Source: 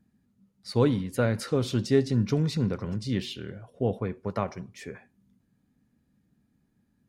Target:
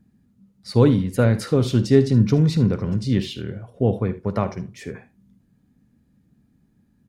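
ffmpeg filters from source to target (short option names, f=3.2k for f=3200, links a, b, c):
-filter_complex "[0:a]lowshelf=f=380:g=6,asplit=2[a][b];[b]aecho=0:1:52|76:0.158|0.141[c];[a][c]amix=inputs=2:normalize=0,volume=3.5dB"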